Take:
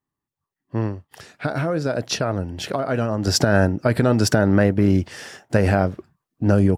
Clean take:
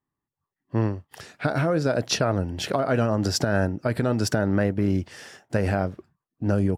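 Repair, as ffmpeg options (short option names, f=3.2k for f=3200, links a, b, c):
-af "asetnsamples=n=441:p=0,asendcmd='3.27 volume volume -6dB',volume=0dB"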